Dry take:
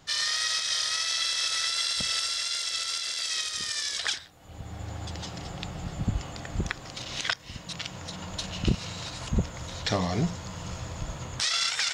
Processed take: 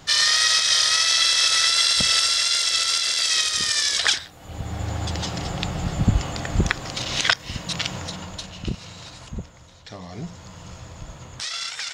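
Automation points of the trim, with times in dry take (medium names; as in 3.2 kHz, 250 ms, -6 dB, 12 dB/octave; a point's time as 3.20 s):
7.94 s +9.5 dB
8.54 s -3 dB
9.13 s -3 dB
9.85 s -13.5 dB
10.42 s -3 dB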